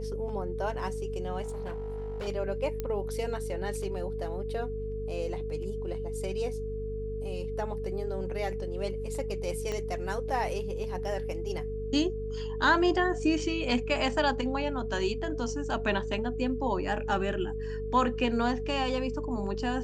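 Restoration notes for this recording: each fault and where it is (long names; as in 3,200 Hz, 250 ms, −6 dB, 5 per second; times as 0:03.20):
mains hum 50 Hz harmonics 5 −37 dBFS
whistle 440 Hz −35 dBFS
0:01.42–0:02.28: clipping −32 dBFS
0:02.80: click −19 dBFS
0:09.72: click −21 dBFS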